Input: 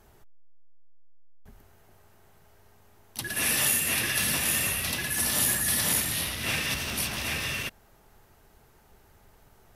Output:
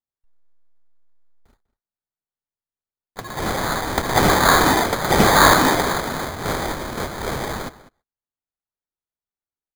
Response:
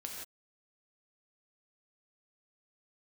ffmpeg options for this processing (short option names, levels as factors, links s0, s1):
-filter_complex "[0:a]agate=range=0.00355:threshold=0.00447:ratio=16:detection=peak,aexciter=amount=3.3:drive=8:freq=8000,acrusher=samples=16:mix=1:aa=0.000001,asplit=2[s0][s1];[s1]adelay=198.3,volume=0.126,highshelf=f=4000:g=-4.46[s2];[s0][s2]amix=inputs=2:normalize=0"